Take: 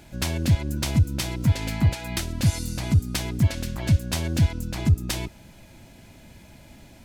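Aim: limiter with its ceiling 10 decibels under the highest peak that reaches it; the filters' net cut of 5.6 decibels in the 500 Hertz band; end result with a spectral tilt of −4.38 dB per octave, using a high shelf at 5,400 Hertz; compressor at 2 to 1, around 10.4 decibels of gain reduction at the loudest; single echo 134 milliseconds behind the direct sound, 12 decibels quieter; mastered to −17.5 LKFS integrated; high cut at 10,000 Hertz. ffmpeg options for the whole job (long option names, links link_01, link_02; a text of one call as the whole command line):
ffmpeg -i in.wav -af "lowpass=10000,equalizer=frequency=500:width_type=o:gain=-8.5,highshelf=frequency=5400:gain=7.5,acompressor=threshold=-34dB:ratio=2,alimiter=level_in=1.5dB:limit=-24dB:level=0:latency=1,volume=-1.5dB,aecho=1:1:134:0.251,volume=18dB" out.wav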